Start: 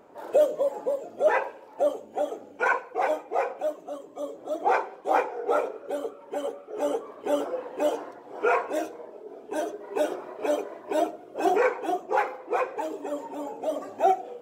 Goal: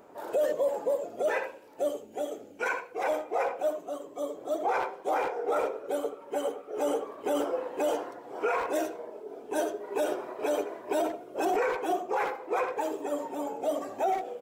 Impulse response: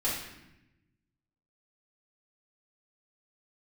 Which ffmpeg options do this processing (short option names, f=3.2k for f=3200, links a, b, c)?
-filter_complex "[0:a]asettb=1/sr,asplit=3[a][b][c];[a]atrim=end=1.224[d];[b]atrim=start=1.22:end=3.04,asetpts=PTS-STARTPTS,afade=t=in:d=0.004:c=qsin,afade=t=out:st=1.816:d=0.004:c=qsin,equalizer=f=910:w=0.81:g=-9[e];[c]atrim=start=3.036[f];[d][e]acrossfade=d=0.004:c1=hsin:c2=qsin[g];[g][f]acrossfade=d=0.004:c1=qsin:c2=hsin,asplit=2[h][i];[i]adelay=80,highpass=300,lowpass=3.4k,asoftclip=type=hard:threshold=-19.5dB,volume=-10dB[j];[h][j]amix=inputs=2:normalize=0,alimiter=limit=-20dB:level=0:latency=1:release=16,highshelf=f=7.7k:g=7"